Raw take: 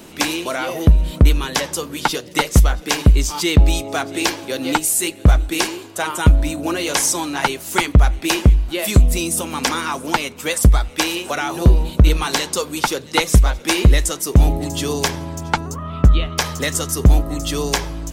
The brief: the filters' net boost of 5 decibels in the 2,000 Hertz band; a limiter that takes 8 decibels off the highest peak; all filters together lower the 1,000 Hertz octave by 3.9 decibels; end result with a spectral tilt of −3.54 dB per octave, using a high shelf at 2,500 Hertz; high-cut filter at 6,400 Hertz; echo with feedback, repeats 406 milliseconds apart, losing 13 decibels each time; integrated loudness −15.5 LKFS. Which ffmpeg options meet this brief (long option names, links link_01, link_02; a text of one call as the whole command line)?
ffmpeg -i in.wav -af "lowpass=6400,equalizer=frequency=1000:width_type=o:gain=-8,equalizer=frequency=2000:width_type=o:gain=6,highshelf=frequency=2500:gain=5.5,alimiter=limit=-7dB:level=0:latency=1,aecho=1:1:406|812|1218:0.224|0.0493|0.0108,volume=3.5dB" out.wav